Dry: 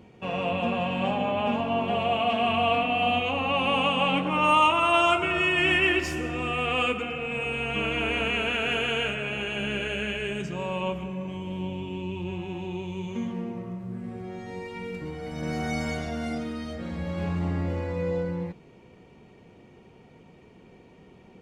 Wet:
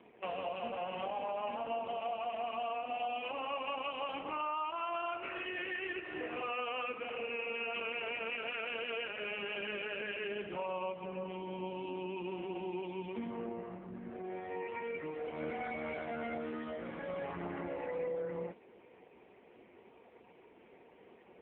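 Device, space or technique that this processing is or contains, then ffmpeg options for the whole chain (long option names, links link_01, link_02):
voicemail: -filter_complex "[0:a]asplit=3[link_01][link_02][link_03];[link_01]afade=type=out:start_time=11.91:duration=0.02[link_04];[link_02]lowpass=6200,afade=type=in:start_time=11.91:duration=0.02,afade=type=out:start_time=12.82:duration=0.02[link_05];[link_03]afade=type=in:start_time=12.82:duration=0.02[link_06];[link_04][link_05][link_06]amix=inputs=3:normalize=0,highpass=390,lowpass=2800,acompressor=threshold=-34dB:ratio=10,volume=1dB" -ar 8000 -c:a libopencore_amrnb -b:a 5150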